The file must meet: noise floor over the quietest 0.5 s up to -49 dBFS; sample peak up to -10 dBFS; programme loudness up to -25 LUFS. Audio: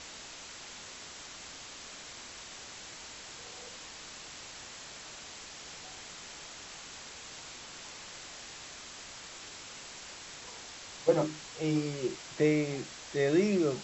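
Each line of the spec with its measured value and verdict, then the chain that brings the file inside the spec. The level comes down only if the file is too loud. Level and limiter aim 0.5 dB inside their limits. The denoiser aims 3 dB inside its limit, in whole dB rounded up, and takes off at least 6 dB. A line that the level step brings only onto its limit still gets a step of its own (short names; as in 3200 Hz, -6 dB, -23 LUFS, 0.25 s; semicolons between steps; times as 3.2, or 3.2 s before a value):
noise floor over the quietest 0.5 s -47 dBFS: fail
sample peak -13.5 dBFS: OK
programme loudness -37.0 LUFS: OK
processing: denoiser 6 dB, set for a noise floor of -47 dBFS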